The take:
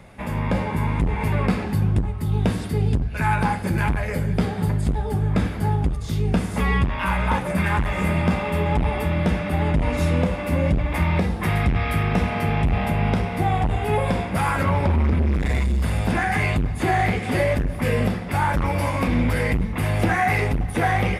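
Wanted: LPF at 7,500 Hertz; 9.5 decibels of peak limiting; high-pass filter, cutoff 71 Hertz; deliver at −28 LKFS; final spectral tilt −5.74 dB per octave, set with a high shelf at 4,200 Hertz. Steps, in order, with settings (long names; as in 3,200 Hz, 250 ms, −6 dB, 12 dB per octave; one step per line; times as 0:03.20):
high-pass filter 71 Hz
low-pass filter 7,500 Hz
high-shelf EQ 4,200 Hz +6 dB
level −2 dB
brickwall limiter −19 dBFS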